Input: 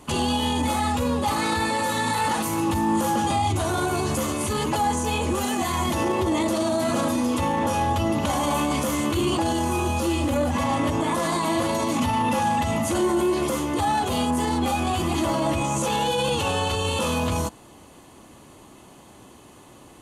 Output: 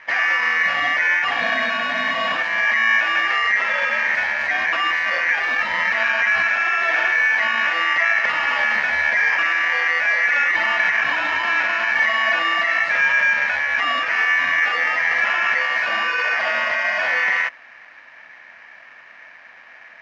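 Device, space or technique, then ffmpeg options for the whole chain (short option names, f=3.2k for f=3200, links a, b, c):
ring modulator pedal into a guitar cabinet: -af "aeval=exprs='val(0)*sgn(sin(2*PI*2000*n/s))':c=same,highpass=96,equalizer=f=100:t=q:w=4:g=-7,equalizer=f=170:t=q:w=4:g=-4,equalizer=f=250:t=q:w=4:g=-3,equalizer=f=660:t=q:w=4:g=9,equalizer=f=1.8k:t=q:w=4:g=8,equalizer=f=3.1k:t=q:w=4:g=-7,lowpass=f=3.6k:w=0.5412,lowpass=f=3.6k:w=1.3066,volume=2dB"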